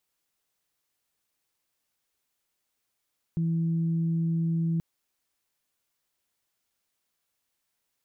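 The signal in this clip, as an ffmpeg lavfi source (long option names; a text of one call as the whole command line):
ffmpeg -f lavfi -i "aevalsrc='0.0668*sin(2*PI*165*t)+0.00944*sin(2*PI*330*t)':duration=1.43:sample_rate=44100" out.wav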